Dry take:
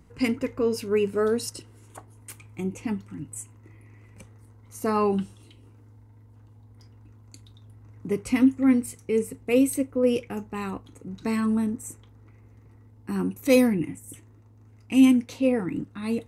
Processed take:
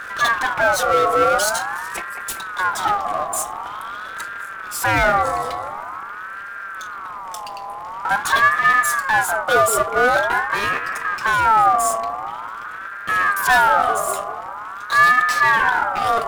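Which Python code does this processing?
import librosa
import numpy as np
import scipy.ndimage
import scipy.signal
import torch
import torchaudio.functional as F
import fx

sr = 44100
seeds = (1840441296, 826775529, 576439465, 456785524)

y = fx.power_curve(x, sr, exponent=0.5)
y = fx.echo_wet_lowpass(y, sr, ms=195, feedback_pct=54, hz=840.0, wet_db=-6.0)
y = fx.ring_lfo(y, sr, carrier_hz=1200.0, swing_pct=25, hz=0.46)
y = y * librosa.db_to_amplitude(2.5)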